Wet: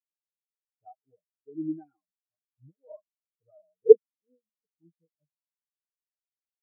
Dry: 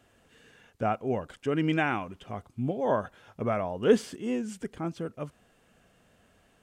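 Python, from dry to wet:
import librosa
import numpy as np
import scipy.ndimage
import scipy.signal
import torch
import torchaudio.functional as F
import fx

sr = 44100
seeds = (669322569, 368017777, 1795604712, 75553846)

y = x + 0.71 * np.pad(x, (int(6.5 * sr / 1000.0), 0))[:len(x)]
y = fx.spectral_expand(y, sr, expansion=4.0)
y = y * 10.0 ** (5.0 / 20.0)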